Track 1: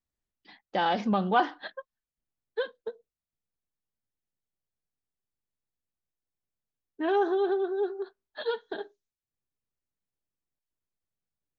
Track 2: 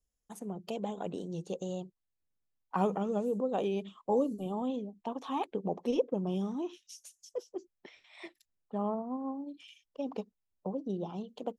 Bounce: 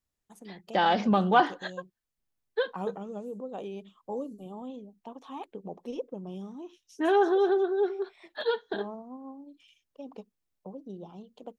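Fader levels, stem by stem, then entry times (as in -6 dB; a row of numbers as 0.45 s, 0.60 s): +2.5 dB, -6.5 dB; 0.00 s, 0.00 s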